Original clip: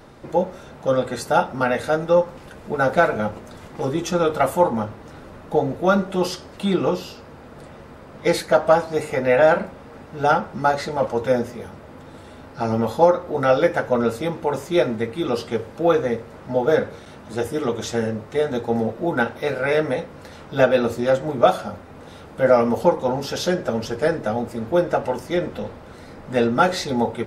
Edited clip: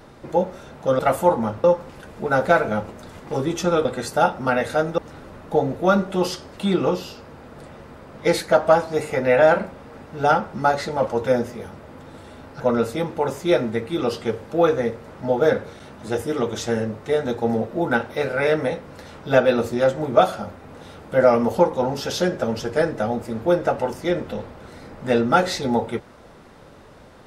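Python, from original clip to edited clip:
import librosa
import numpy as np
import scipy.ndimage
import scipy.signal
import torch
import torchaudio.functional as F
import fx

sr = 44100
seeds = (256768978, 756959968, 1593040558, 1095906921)

y = fx.edit(x, sr, fx.swap(start_s=0.99, length_s=1.13, other_s=4.33, other_length_s=0.65),
    fx.cut(start_s=12.6, length_s=1.26), tone=tone)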